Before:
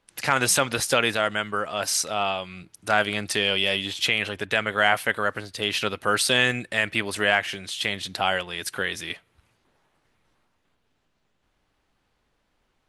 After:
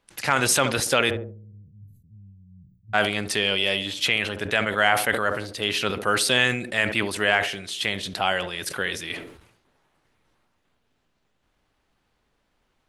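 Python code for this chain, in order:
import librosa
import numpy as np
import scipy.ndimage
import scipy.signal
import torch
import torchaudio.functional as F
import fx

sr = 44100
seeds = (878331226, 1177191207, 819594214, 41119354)

y = fx.cheby2_bandstop(x, sr, low_hz=590.0, high_hz=10000.0, order=4, stop_db=70, at=(1.09, 2.93), fade=0.02)
y = fx.echo_banded(y, sr, ms=71, feedback_pct=52, hz=370.0, wet_db=-11.5)
y = fx.sustainer(y, sr, db_per_s=78.0)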